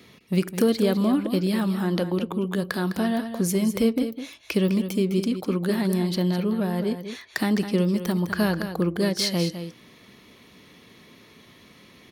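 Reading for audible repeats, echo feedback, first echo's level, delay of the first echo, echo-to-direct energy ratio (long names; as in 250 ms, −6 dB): 1, repeats not evenly spaced, −10.0 dB, 206 ms, −10.0 dB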